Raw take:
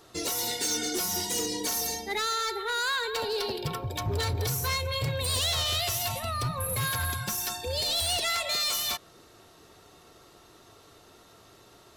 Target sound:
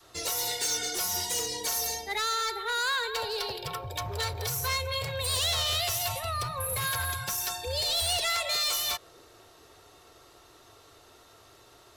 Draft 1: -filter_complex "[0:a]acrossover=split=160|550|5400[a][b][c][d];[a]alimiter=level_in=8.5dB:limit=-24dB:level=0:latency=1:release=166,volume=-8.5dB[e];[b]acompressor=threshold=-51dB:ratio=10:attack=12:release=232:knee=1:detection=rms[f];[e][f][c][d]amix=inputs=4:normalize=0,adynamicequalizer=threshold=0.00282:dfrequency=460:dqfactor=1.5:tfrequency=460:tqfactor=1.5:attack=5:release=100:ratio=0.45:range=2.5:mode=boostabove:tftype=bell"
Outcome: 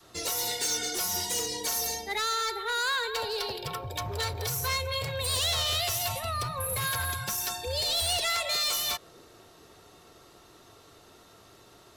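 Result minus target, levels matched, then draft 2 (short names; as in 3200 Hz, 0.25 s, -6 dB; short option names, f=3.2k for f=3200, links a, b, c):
250 Hz band +3.0 dB
-filter_complex "[0:a]acrossover=split=160|550|5400[a][b][c][d];[a]alimiter=level_in=8.5dB:limit=-24dB:level=0:latency=1:release=166,volume=-8.5dB[e];[b]acompressor=threshold=-51dB:ratio=10:attack=12:release=232:knee=1:detection=rms,highpass=280[f];[e][f][c][d]amix=inputs=4:normalize=0,adynamicequalizer=threshold=0.00282:dfrequency=460:dqfactor=1.5:tfrequency=460:tqfactor=1.5:attack=5:release=100:ratio=0.45:range=2.5:mode=boostabove:tftype=bell"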